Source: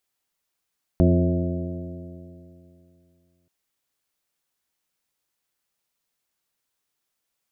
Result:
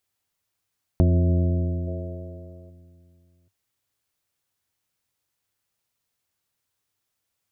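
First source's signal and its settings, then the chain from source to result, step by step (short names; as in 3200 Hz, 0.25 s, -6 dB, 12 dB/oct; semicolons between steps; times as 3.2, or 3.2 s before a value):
stretched partials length 2.48 s, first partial 85.5 Hz, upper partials 0/-4/-4/-16/-11.5/-9 dB, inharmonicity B 0.0034, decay 2.73 s, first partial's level -17 dB
spectral gain 1.88–2.7, 350–1300 Hz +9 dB; bell 99 Hz +13 dB 0.64 oct; compressor, threshold -16 dBFS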